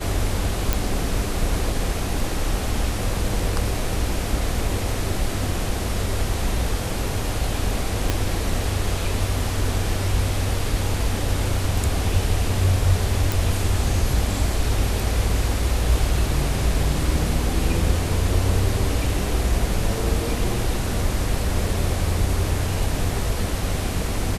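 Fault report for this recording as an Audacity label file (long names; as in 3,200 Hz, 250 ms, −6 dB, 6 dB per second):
0.730000	0.730000	click
8.100000	8.100000	click −6 dBFS
13.320000	13.320000	click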